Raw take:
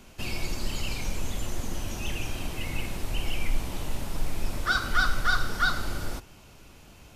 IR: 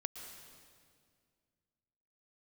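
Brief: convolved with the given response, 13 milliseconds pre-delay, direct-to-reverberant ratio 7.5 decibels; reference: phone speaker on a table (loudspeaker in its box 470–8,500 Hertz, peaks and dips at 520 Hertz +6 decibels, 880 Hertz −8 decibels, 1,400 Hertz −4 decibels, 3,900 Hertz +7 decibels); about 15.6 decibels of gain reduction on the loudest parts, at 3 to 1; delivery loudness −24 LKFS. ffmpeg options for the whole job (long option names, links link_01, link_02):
-filter_complex "[0:a]acompressor=threshold=-40dB:ratio=3,asplit=2[link_01][link_02];[1:a]atrim=start_sample=2205,adelay=13[link_03];[link_02][link_03]afir=irnorm=-1:irlink=0,volume=-6dB[link_04];[link_01][link_04]amix=inputs=2:normalize=0,highpass=frequency=470:width=0.5412,highpass=frequency=470:width=1.3066,equalizer=frequency=520:width_type=q:width=4:gain=6,equalizer=frequency=880:width_type=q:width=4:gain=-8,equalizer=frequency=1400:width_type=q:width=4:gain=-4,equalizer=frequency=3900:width_type=q:width=4:gain=7,lowpass=frequency=8500:width=0.5412,lowpass=frequency=8500:width=1.3066,volume=21.5dB"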